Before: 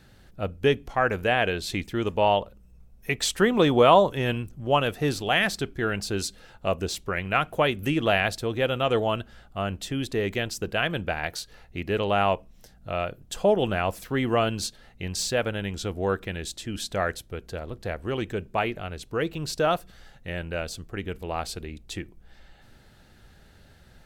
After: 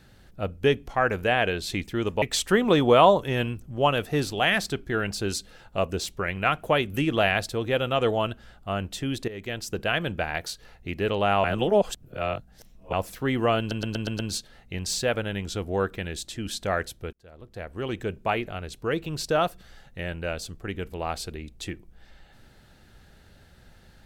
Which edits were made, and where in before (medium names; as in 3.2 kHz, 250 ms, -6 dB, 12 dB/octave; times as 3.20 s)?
2.22–3.11 s: delete
10.17–10.62 s: fade in, from -16 dB
12.33–13.82 s: reverse
14.48 s: stutter 0.12 s, 6 plays
17.42–18.34 s: fade in